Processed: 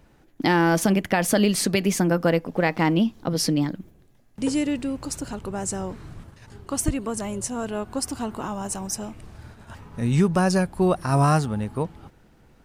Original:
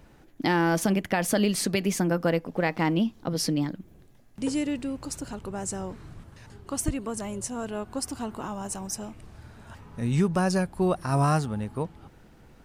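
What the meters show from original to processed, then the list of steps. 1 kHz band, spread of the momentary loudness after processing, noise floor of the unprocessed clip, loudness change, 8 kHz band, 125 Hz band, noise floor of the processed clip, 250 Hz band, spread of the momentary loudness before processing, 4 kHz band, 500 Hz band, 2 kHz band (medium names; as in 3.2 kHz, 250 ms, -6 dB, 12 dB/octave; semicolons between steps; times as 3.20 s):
+4.0 dB, 12 LU, -54 dBFS, +4.0 dB, +4.0 dB, +4.0 dB, -56 dBFS, +4.0 dB, 12 LU, +4.0 dB, +4.0 dB, +4.0 dB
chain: gate -47 dBFS, range -6 dB; trim +4 dB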